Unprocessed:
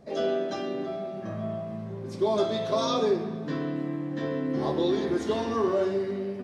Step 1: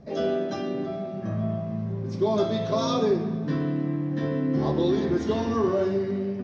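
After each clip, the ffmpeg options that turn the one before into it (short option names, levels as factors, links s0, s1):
-af "lowpass=f=5800:t=q:w=3.5,bass=f=250:g=9,treble=f=4000:g=-12"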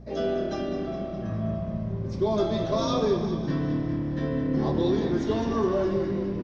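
-filter_complex "[0:a]aeval=exprs='val(0)+0.00708*(sin(2*PI*60*n/s)+sin(2*PI*2*60*n/s)/2+sin(2*PI*3*60*n/s)/3+sin(2*PI*4*60*n/s)/4+sin(2*PI*5*60*n/s)/5)':c=same,asplit=2[s0][s1];[s1]asplit=7[s2][s3][s4][s5][s6][s7][s8];[s2]adelay=205,afreqshift=-36,volume=0.335[s9];[s3]adelay=410,afreqshift=-72,volume=0.202[s10];[s4]adelay=615,afreqshift=-108,volume=0.12[s11];[s5]adelay=820,afreqshift=-144,volume=0.0724[s12];[s6]adelay=1025,afreqshift=-180,volume=0.0437[s13];[s7]adelay=1230,afreqshift=-216,volume=0.026[s14];[s8]adelay=1435,afreqshift=-252,volume=0.0157[s15];[s9][s10][s11][s12][s13][s14][s15]amix=inputs=7:normalize=0[s16];[s0][s16]amix=inputs=2:normalize=0,volume=0.841"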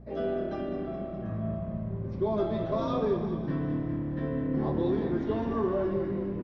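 -af "lowpass=2300,volume=0.668"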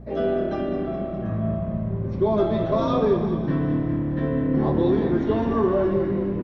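-af "bandreject=f=4900:w=14,volume=2.37"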